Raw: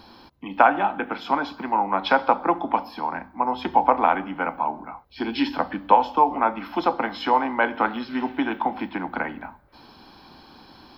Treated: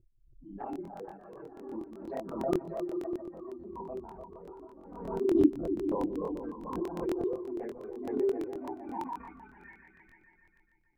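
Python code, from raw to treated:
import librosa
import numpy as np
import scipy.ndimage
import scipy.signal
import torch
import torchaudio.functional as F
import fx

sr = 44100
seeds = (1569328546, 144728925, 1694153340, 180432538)

y = fx.bin_expand(x, sr, power=3.0)
y = fx.chorus_voices(y, sr, voices=6, hz=0.39, base_ms=29, depth_ms=1.8, mix_pct=60)
y = fx.doubler(y, sr, ms=31.0, db=-10)
y = fx.formant_shift(y, sr, semitones=3)
y = fx.echo_opening(y, sr, ms=147, hz=200, octaves=2, feedback_pct=70, wet_db=-3)
y = fx.env_flanger(y, sr, rest_ms=5.7, full_db=-23.0)
y = fx.filter_sweep_lowpass(y, sr, from_hz=360.0, to_hz=1700.0, start_s=8.11, end_s=9.68, q=5.9)
y = fx.buffer_crackle(y, sr, first_s=0.71, period_s=0.12, block=1024, kind='repeat')
y = fx.pre_swell(y, sr, db_per_s=60.0)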